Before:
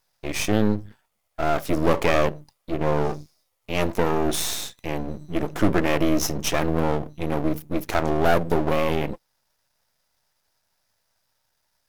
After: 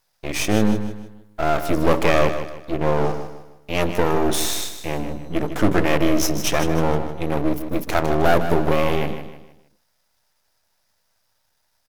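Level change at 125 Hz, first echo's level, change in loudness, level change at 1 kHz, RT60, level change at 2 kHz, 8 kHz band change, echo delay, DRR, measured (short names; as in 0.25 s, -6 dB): +2.5 dB, -10.0 dB, +2.5 dB, +3.0 dB, none, +3.0 dB, +3.0 dB, 0.155 s, none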